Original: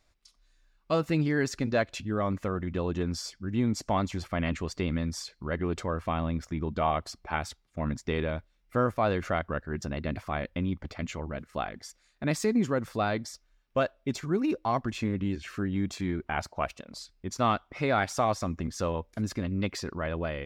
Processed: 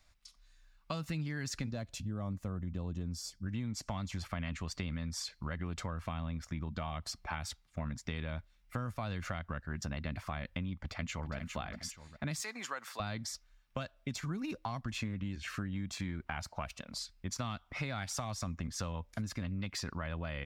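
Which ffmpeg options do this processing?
ffmpeg -i in.wav -filter_complex "[0:a]asettb=1/sr,asplit=3[link_01][link_02][link_03];[link_01]atrim=end=1.714[link_04];[link_02]atrim=start=1.71:end=3.46,asetpts=PTS-STARTPTS,afade=type=in:duration=0.004:curve=qsin,afade=type=out:start_time=1.746:duration=0.004:curve=qsin,equalizer=frequency=1900:width=0.47:gain=-14[link_05];[link_03]atrim=start=3.456[link_06];[link_04][link_05]acrossfade=duration=0.004:curve1=hsin:curve2=qsin[link_07];[link_07][link_06]acrossfade=duration=0.004:curve1=qsin:curve2=hsin,asplit=2[link_08][link_09];[link_09]afade=type=in:start_time=10.75:duration=0.01,afade=type=out:start_time=11.34:duration=0.01,aecho=0:1:410|820|1230|1640:0.375837|0.131543|0.0460401|0.016114[link_10];[link_08][link_10]amix=inputs=2:normalize=0,asettb=1/sr,asplit=3[link_11][link_12][link_13];[link_11]atrim=end=12.414[link_14];[link_12]atrim=start=12.41:end=13,asetpts=PTS-STARTPTS,afade=type=in:duration=0.004:curve=qsin,afade=type=out:start_time=0.586:duration=0.004:curve=qsin,highpass=800[link_15];[link_13]atrim=start=12.996[link_16];[link_14][link_15]acrossfade=duration=0.004:curve1=hsin:curve2=qsin[link_17];[link_17][link_16]acrossfade=duration=0.004:curve1=qsin:curve2=hsin,acrossover=split=250|3000[link_18][link_19][link_20];[link_19]acompressor=threshold=-32dB:ratio=6[link_21];[link_18][link_21][link_20]amix=inputs=3:normalize=0,equalizer=frequency=390:width=1.2:gain=-11.5,acompressor=threshold=-37dB:ratio=6,volume=2.5dB" out.wav

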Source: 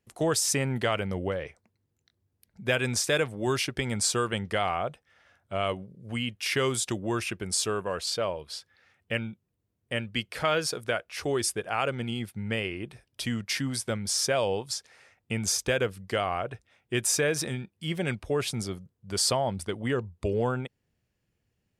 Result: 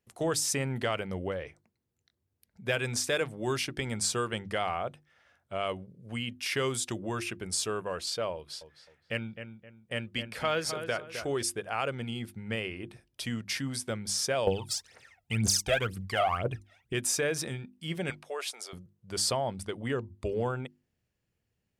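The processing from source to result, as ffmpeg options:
ffmpeg -i in.wav -filter_complex "[0:a]asettb=1/sr,asplit=3[link_01][link_02][link_03];[link_01]atrim=end=8.354[link_04];[link_02]atrim=start=8.35:end=11.43,asetpts=PTS-STARTPTS,afade=type=in:duration=0.004:curve=qsin,afade=type=out:start_time=3.076:duration=0.004:curve=qsin,asplit=2[link_05][link_06];[link_06]adelay=261,lowpass=frequency=2300:poles=1,volume=-8.5dB,asplit=2[link_07][link_08];[link_08]adelay=261,lowpass=frequency=2300:poles=1,volume=0.34,asplit=2[link_09][link_10];[link_10]adelay=261,lowpass=frequency=2300:poles=1,volume=0.34,asplit=2[link_11][link_12];[link_12]adelay=261,lowpass=frequency=2300:poles=1,volume=0.34[link_13];[link_05][link_07][link_09][link_11][link_13]amix=inputs=5:normalize=0,atrim=end_sample=135828[link_14];[link_03]atrim=start=11.426[link_15];[link_04][link_14]acrossfade=duration=0.004:curve1=hsin:curve2=qsin[link_16];[link_16][link_15]acrossfade=duration=0.004:curve1=qsin:curve2=hsin,asettb=1/sr,asplit=3[link_17][link_18][link_19];[link_17]atrim=end=14.474[link_20];[link_18]atrim=start=14.47:end=16.93,asetpts=PTS-STARTPTS,afade=type=in:duration=0.004:curve=qsin,afade=type=out:start_time=2.456:duration=0.004:curve=qsin,aphaser=in_gain=1:out_gain=1:delay=1.6:decay=0.79:speed=2:type=triangular[link_21];[link_19]atrim=start=16.926[link_22];[link_20][link_21]acrossfade=duration=0.004:curve1=hsin:curve2=qsin[link_23];[link_23][link_22]acrossfade=duration=0.004:curve1=qsin:curve2=hsin,asettb=1/sr,asplit=3[link_24][link_25][link_26];[link_24]atrim=end=18.104[link_27];[link_25]atrim=start=18.1:end=18.73,asetpts=PTS-STARTPTS,afade=type=in:duration=0.004:curve=qsin,afade=type=out:start_time=0.626:duration=0.004:curve=qsin,highpass=frequency=520:width=0.5412,highpass=frequency=520:width=1.3066[link_28];[link_26]atrim=start=18.726[link_29];[link_27][link_28]acrossfade=duration=0.004:curve1=hsin:curve2=qsin[link_30];[link_30][link_29]acrossfade=duration=0.004:curve1=qsin:curve2=hsin,bandreject=frequency=50:width_type=h:width=6,bandreject=frequency=100:width_type=h:width=6,bandreject=frequency=150:width_type=h:width=6,bandreject=frequency=200:width_type=h:width=6,bandreject=frequency=250:width_type=h:width=6,bandreject=frequency=300:width_type=h:width=6,bandreject=frequency=350:width_type=h:width=6,acontrast=43,volume=-9dB" out.wav

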